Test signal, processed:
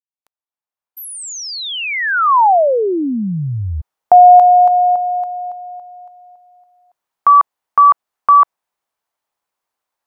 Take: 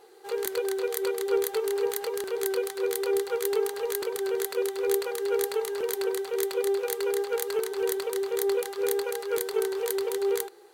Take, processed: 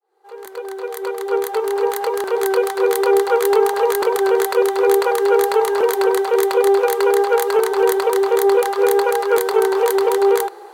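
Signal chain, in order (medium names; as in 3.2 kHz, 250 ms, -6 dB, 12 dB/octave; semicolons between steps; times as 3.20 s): fade-in on the opening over 3.17 s; peaking EQ 890 Hz +14.5 dB 1.8 oct; in parallel at +2 dB: peak limiter -14.5 dBFS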